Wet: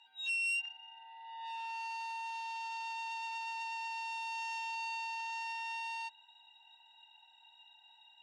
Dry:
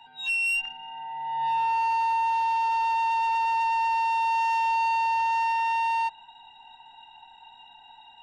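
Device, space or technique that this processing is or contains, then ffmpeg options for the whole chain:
piezo pickup straight into a mixer: -af "lowpass=6400,aderivative"

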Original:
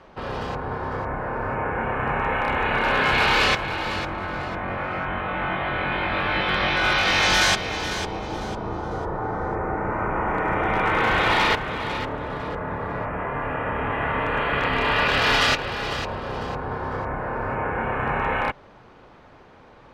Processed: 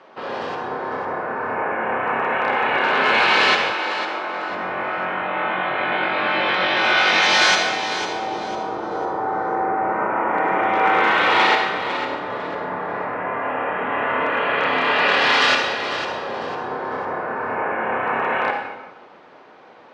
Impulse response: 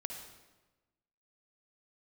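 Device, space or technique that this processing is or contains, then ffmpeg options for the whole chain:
supermarket ceiling speaker: -filter_complex "[0:a]highpass=300,lowpass=5900[link_01];[1:a]atrim=start_sample=2205[link_02];[link_01][link_02]afir=irnorm=-1:irlink=0,asettb=1/sr,asplit=3[link_03][link_04][link_05];[link_03]atrim=end=3.734[link_06];[link_04]atrim=start=3.73:end=4.5,asetpts=PTS-STARTPTS,afade=type=in:duration=0.004:curve=qsin,afade=type=out:start_time=0.766:duration=0.004:curve=qsin,highpass=290[link_07];[link_05]atrim=start=4.496[link_08];[link_06][link_07]acrossfade=duration=0.004:curve1=hsin:curve2=qsin[link_09];[link_09][link_08]acrossfade=duration=0.004:curve1=qsin:curve2=hsin,volume=5dB"

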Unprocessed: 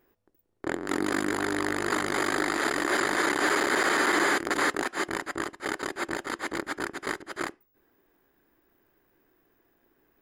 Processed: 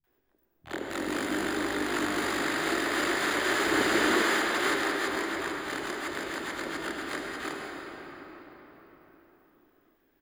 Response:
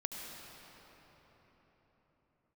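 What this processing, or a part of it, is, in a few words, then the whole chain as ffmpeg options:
shimmer-style reverb: -filter_complex "[0:a]asplit=2[link_01][link_02];[link_02]asetrate=88200,aresample=44100,atempo=0.5,volume=-9dB[link_03];[link_01][link_03]amix=inputs=2:normalize=0[link_04];[1:a]atrim=start_sample=2205[link_05];[link_04][link_05]afir=irnorm=-1:irlink=0,asettb=1/sr,asplit=3[link_06][link_07][link_08];[link_06]atrim=end=3.654[link_09];[link_07]atrim=start=3.65:end=4.15,asetpts=PTS-STARTPTS,afade=type=in:duration=0.004:curve=qsin,afade=type=out:start_time=0.496:duration=0.004:curve=qsin,lowshelf=frequency=340:gain=8[link_10];[link_08]atrim=start=4.146[link_11];[link_09][link_10]acrossfade=duration=0.004:curve1=hsin:curve2=qsin[link_12];[link_12][link_11]acrossfade=duration=0.004:curve1=qsin:curve2=hsin,acrossover=split=160|760[link_13][link_14][link_15];[link_15]adelay=40[link_16];[link_14]adelay=70[link_17];[link_13][link_17][link_16]amix=inputs=3:normalize=0,volume=-2dB"

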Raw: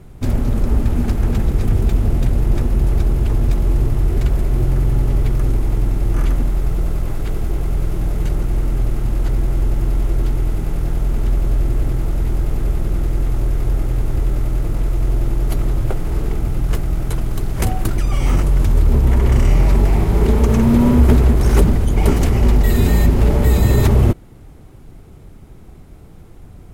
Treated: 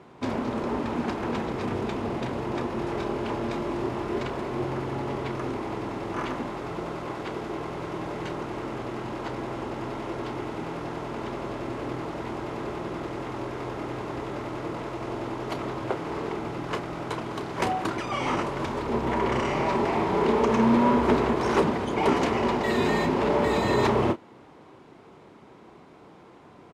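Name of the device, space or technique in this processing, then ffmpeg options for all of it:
intercom: -filter_complex "[0:a]highpass=310,lowpass=4200,equalizer=frequency=1000:width_type=o:width=0.31:gain=8,asoftclip=type=tanh:threshold=-12dB,asplit=2[link_01][link_02];[link_02]adelay=31,volume=-10.5dB[link_03];[link_01][link_03]amix=inputs=2:normalize=0,asettb=1/sr,asplit=3[link_04][link_05][link_06];[link_04]atrim=end=2.744[link_07];[link_05]atrim=start=2.74:end=4.23,asetpts=PTS-STARTPTS,afade=type=in:duration=0.004:curve=qsin,afade=type=out:start_time=1.486:duration=0.004:curve=qsin,asplit=2[link_08][link_09];[link_09]adelay=26,volume=-6.5dB[link_10];[link_08][link_10]amix=inputs=2:normalize=0,atrim=end_sample=65709[link_11];[link_06]atrim=start=4.226[link_12];[link_07][link_11]acrossfade=duration=0.004:curve1=hsin:curve2=qsin[link_13];[link_13][link_12]acrossfade=duration=0.004:curve1=qsin:curve2=hsin"

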